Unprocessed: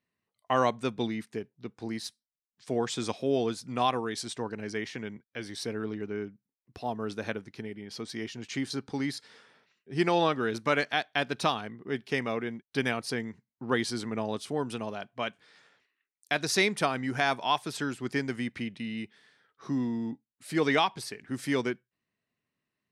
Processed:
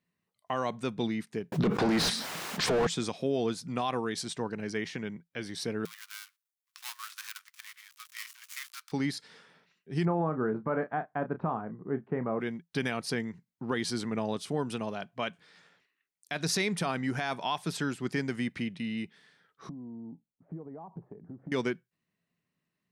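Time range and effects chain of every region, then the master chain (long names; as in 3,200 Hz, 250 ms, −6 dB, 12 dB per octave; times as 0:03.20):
0:01.52–0:02.87: mid-hump overdrive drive 39 dB, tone 1,100 Hz, clips at −16.5 dBFS + envelope flattener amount 70%
0:05.85–0:08.92: gap after every zero crossing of 0.17 ms + elliptic high-pass filter 1,100 Hz, stop band 50 dB + high-shelf EQ 5,100 Hz +10.5 dB
0:10.05–0:12.40: low-pass filter 1,300 Hz 24 dB per octave + double-tracking delay 32 ms −11 dB
0:19.69–0:21.52: inverse Chebyshev low-pass filter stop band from 4,900 Hz, stop band 80 dB + downward compressor 12 to 1, threshold −41 dBFS
whole clip: parametric band 170 Hz +11.5 dB 0.27 octaves; brickwall limiter −19.5 dBFS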